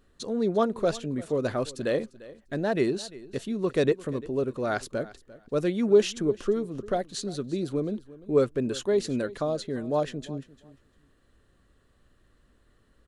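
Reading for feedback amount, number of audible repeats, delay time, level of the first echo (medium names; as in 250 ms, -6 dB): 17%, 2, 347 ms, -19.0 dB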